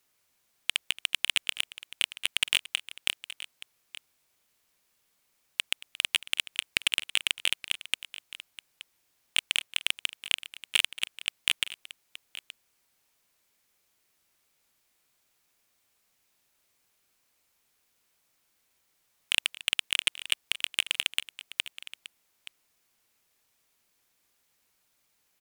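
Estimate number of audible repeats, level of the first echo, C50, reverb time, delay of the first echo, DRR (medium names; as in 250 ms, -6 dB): 2, -18.5 dB, no reverb, no reverb, 226 ms, no reverb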